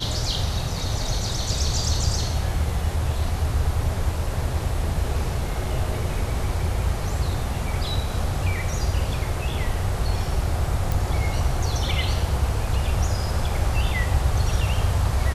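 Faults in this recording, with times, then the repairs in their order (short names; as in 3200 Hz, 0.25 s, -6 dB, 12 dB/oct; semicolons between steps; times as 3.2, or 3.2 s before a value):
10.92 pop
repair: de-click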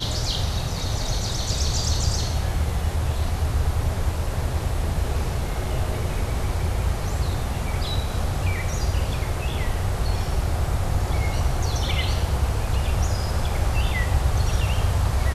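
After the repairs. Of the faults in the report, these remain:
none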